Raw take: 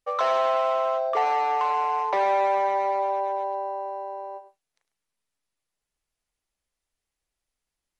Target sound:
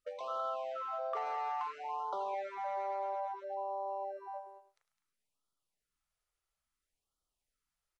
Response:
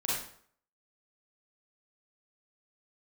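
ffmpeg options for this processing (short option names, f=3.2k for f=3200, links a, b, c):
-af "equalizer=f=1.3k:t=o:w=0.28:g=9.5,acompressor=threshold=-31dB:ratio=5,aecho=1:1:208:0.237,afftfilt=real='re*(1-between(b*sr/1024,210*pow(2100/210,0.5+0.5*sin(2*PI*0.59*pts/sr))/1.41,210*pow(2100/210,0.5+0.5*sin(2*PI*0.59*pts/sr))*1.41))':imag='im*(1-between(b*sr/1024,210*pow(2100/210,0.5+0.5*sin(2*PI*0.59*pts/sr))/1.41,210*pow(2100/210,0.5+0.5*sin(2*PI*0.59*pts/sr))*1.41))':win_size=1024:overlap=0.75,volume=-5dB"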